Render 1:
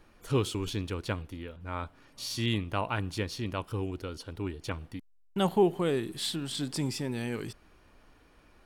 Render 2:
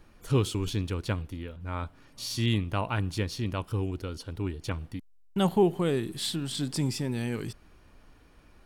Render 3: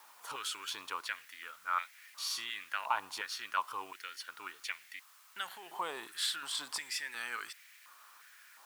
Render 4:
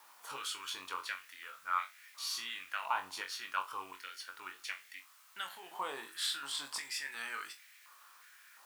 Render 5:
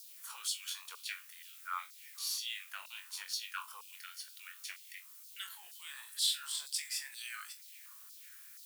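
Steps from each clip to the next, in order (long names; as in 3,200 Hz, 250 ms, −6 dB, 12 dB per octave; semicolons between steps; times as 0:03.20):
bass and treble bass +5 dB, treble +2 dB
brickwall limiter −22 dBFS, peak gain reduction 10.5 dB; bit-depth reduction 10 bits, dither triangular; high-pass on a step sequencer 2.8 Hz 940–2,000 Hz; level −2 dB
flutter between parallel walls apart 3.7 metres, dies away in 0.21 s; level −2.5 dB
first difference; auto-filter high-pass saw down 2.1 Hz 420–5,000 Hz; one half of a high-frequency compander encoder only; level +3.5 dB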